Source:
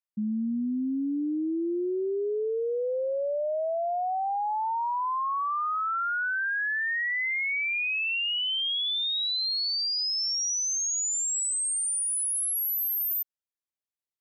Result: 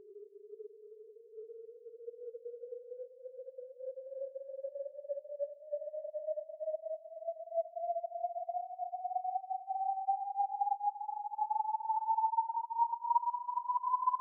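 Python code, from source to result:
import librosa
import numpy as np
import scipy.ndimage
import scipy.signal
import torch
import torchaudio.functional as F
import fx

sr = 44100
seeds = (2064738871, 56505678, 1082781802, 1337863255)

y = scipy.signal.sosfilt(scipy.signal.butter(2, 660.0, 'highpass', fs=sr, output='sos'), x)
y = fx.paulstretch(y, sr, seeds[0], factor=5.0, window_s=0.05, from_s=2.24)
y = fx.upward_expand(y, sr, threshold_db=-37.0, expansion=2.5)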